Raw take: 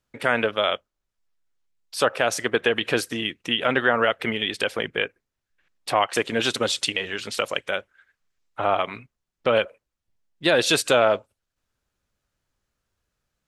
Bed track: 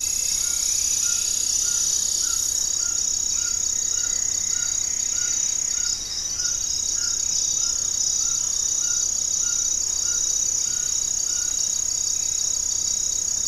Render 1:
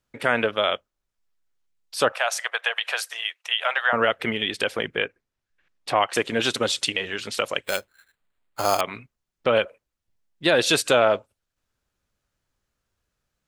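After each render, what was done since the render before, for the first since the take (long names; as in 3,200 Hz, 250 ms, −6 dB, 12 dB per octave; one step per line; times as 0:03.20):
0:02.12–0:03.93: Butterworth high-pass 640 Hz
0:04.94–0:06.00: high-shelf EQ 10,000 Hz −10.5 dB
0:07.64–0:08.81: sample-rate reduction 5,700 Hz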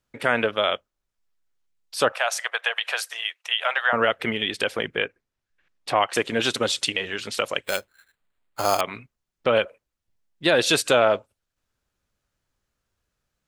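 no processing that can be heard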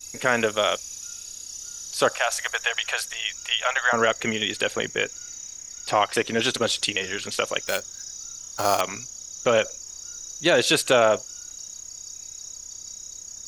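mix in bed track −15.5 dB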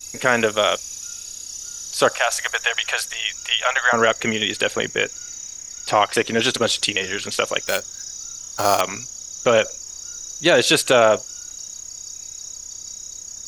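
level +4 dB
brickwall limiter −1 dBFS, peak gain reduction 2 dB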